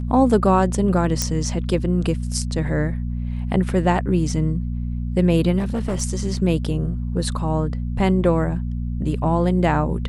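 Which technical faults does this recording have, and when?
hum 60 Hz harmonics 4 -25 dBFS
1.22 s: pop -5 dBFS
5.58–6.02 s: clipped -19 dBFS

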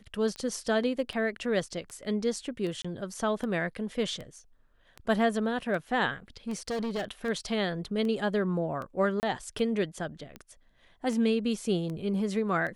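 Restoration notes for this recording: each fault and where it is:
tick 78 rpm -26 dBFS
2.82–2.85 s: dropout 25 ms
6.48–7.29 s: clipped -28.5 dBFS
9.20–9.23 s: dropout 29 ms

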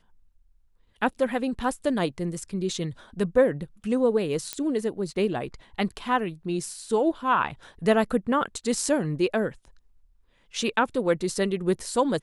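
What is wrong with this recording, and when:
4.53 s: pop -12 dBFS

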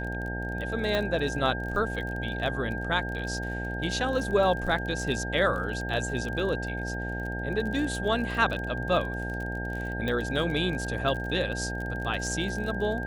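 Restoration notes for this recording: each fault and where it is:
buzz 60 Hz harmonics 15 -34 dBFS
crackle 33 per s -34 dBFS
whine 1.6 kHz -35 dBFS
0.95 s: pop -15 dBFS
10.08 s: pop

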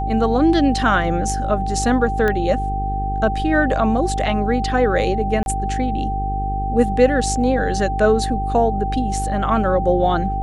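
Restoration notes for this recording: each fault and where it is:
buzz 50 Hz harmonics 9 -24 dBFS
whine 780 Hz -23 dBFS
2.28 s: pop -9 dBFS
5.43–5.46 s: dropout 31 ms

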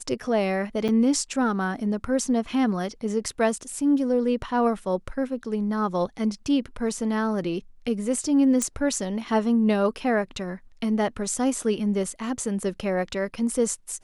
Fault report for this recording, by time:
0.88–0.89 s: dropout 6.7 ms
8.62 s: pop -12 dBFS

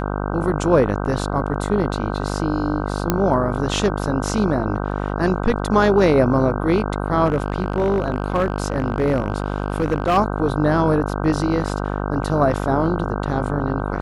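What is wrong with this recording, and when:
buzz 50 Hz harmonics 31 -24 dBFS
3.10 s: pop -3 dBFS
7.25–10.18 s: clipped -13 dBFS

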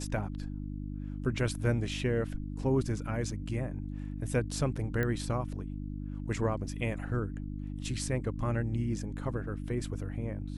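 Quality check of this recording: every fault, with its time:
hum 50 Hz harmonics 6 -38 dBFS
5.03 s: pop -19 dBFS

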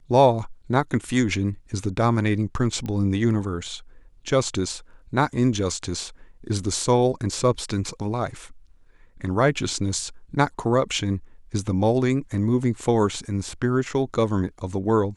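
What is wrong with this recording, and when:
2.86 s: pop -19 dBFS

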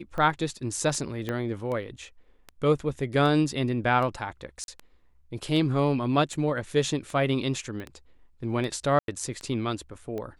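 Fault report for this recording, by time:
tick 78 rpm -23 dBFS
1.29 s: pop -17 dBFS
4.64–4.68 s: dropout 41 ms
7.80 s: pop -26 dBFS
8.99–9.08 s: dropout 92 ms

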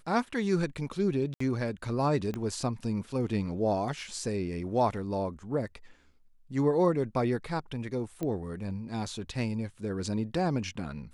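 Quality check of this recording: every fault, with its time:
1.34–1.40 s: dropout 64 ms
2.34 s: pop -22 dBFS
8.23 s: pop -21 dBFS

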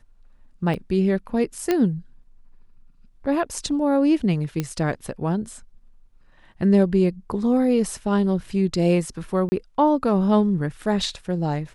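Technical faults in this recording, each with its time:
0.74 s: dropout 4 ms
1.71 s: pop -8 dBFS
4.60 s: pop -11 dBFS
9.49–9.52 s: dropout 30 ms

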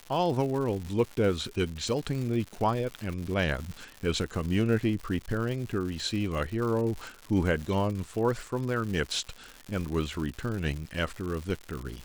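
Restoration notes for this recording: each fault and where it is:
crackle 190 per s -34 dBFS

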